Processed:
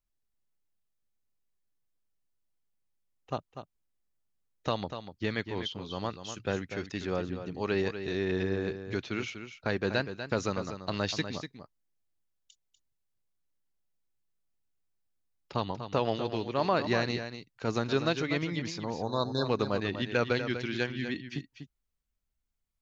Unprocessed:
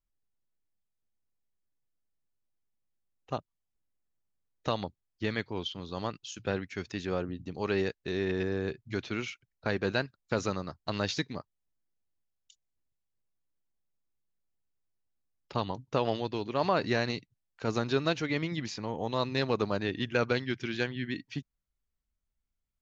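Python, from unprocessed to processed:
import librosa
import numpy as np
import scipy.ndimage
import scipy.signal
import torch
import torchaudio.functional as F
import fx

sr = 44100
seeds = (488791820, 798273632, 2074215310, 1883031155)

y = fx.spec_erase(x, sr, start_s=18.79, length_s=0.66, low_hz=1700.0, high_hz=3500.0)
y = y + 10.0 ** (-9.5 / 20.0) * np.pad(y, (int(244 * sr / 1000.0), 0))[:len(y)]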